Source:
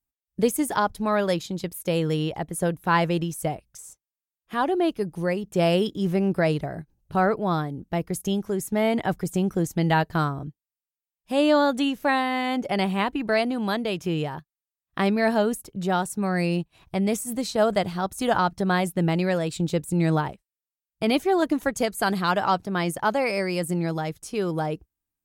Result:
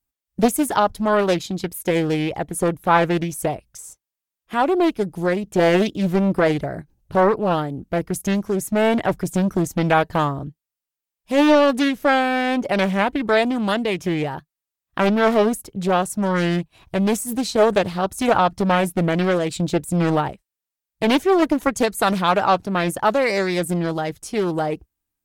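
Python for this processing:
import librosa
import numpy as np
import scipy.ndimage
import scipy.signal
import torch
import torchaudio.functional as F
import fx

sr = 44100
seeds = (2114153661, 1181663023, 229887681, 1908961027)

y = fx.peak_eq(x, sr, hz=160.0, db=-5.0, octaves=0.21)
y = fx.doppler_dist(y, sr, depth_ms=0.5)
y = y * 10.0 ** (5.0 / 20.0)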